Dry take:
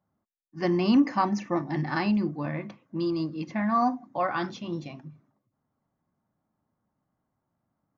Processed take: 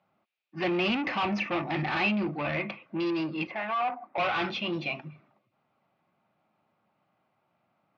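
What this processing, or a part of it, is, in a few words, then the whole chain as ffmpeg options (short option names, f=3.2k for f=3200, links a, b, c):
overdrive pedal into a guitar cabinet: -filter_complex "[0:a]asplit=2[a][b];[b]highpass=f=720:p=1,volume=27dB,asoftclip=type=tanh:threshold=-12dB[c];[a][c]amix=inputs=2:normalize=0,lowpass=f=3.1k:p=1,volume=-6dB,highpass=84,equalizer=f=270:t=q:w=4:g=-8,equalizer=f=460:t=q:w=4:g=-4,equalizer=f=1k:t=q:w=4:g=-6,equalizer=f=1.7k:t=q:w=4:g=-6,equalizer=f=2.5k:t=q:w=4:g=10,lowpass=f=4.3k:w=0.5412,lowpass=f=4.3k:w=1.3066,asettb=1/sr,asplit=3[d][e][f];[d]atrim=end=3.474[g];[e]atrim=start=3.47:end=4.18,asetpts=PTS-STARTPTS,afade=t=in:d=0.004:c=qsin,afade=t=out:st=0.706:d=0.004:c=qsin,acrossover=split=410 2000:gain=0.158 1 0.2[h][i][j];[h][i][j]amix=inputs=3:normalize=0[k];[f]atrim=start=4.176[l];[g][k]acrossfade=d=0.004:c1=hsin:c2=qsin[m];[m][l]acrossfade=d=0.004:c1=qsin:c2=hsin,volume=-6.5dB"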